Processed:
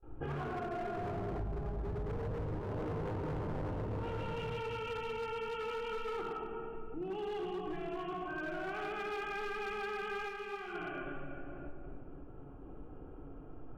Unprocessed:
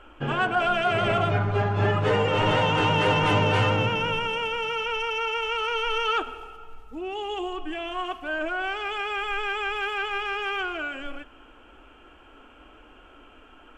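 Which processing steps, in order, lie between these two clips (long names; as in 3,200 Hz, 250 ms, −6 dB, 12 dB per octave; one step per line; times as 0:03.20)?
sub-octave generator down 1 octave, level −4 dB
treble cut that deepens with the level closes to 620 Hz, closed at −19 dBFS
dynamic equaliser 390 Hz, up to +5 dB, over −40 dBFS, Q 2.1
on a send: delay with a band-pass on its return 112 ms, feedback 70%, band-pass 500 Hz, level −14 dB
on the sum: low-pass that shuts in the quiet parts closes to 500 Hz, open at −19 dBFS
noise gate with hold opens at −45 dBFS
rectangular room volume 2,900 cubic metres, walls mixed, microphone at 3.9 metres
hard clipping −17.5 dBFS, distortion −8 dB
0:01.40–0:02.60: low-shelf EQ 150 Hz +8.5 dB
downward compressor 4 to 1, threshold −36 dBFS, peak gain reduction 18.5 dB
0:10.27–0:10.73: micro pitch shift up and down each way 28 cents → 43 cents
level −4 dB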